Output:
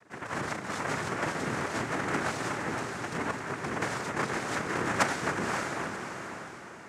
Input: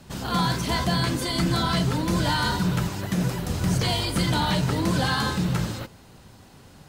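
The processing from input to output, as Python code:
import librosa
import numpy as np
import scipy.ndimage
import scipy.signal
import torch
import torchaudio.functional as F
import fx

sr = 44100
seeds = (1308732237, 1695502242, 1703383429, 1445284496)

p1 = fx.vowel_filter(x, sr, vowel='e')
p2 = fx.tilt_shelf(p1, sr, db=6.5, hz=1300.0)
p3 = fx.cheby_harmonics(p2, sr, harmonics=(4, 6, 8), levels_db=(-8, -11, -12), full_scale_db=-22.0)
p4 = fx.noise_vocoder(p3, sr, seeds[0], bands=3)
p5 = p4 + fx.echo_diffused(p4, sr, ms=539, feedback_pct=43, wet_db=-5.0, dry=0)
y = p5 * librosa.db_to_amplitude(2.0)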